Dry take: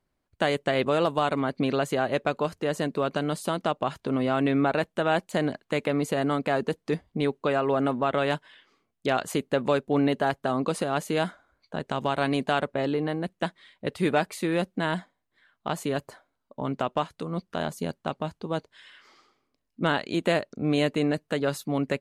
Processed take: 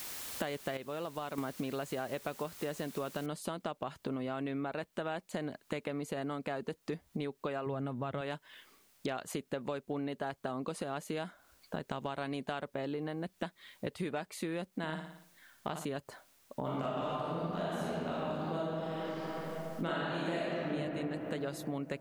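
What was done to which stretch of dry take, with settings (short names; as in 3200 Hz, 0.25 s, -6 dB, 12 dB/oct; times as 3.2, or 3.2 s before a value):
0.77–1.38 gain -10 dB
3.26 noise floor step -44 dB -68 dB
7.66–8.21 bell 110 Hz +13.5 dB 1.3 oct
14.7–15.85 flutter echo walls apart 9.8 m, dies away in 0.46 s
16.6–20.68 reverb throw, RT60 2.7 s, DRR -10 dB
whole clip: compressor 6:1, threshold -36 dBFS; gain +1 dB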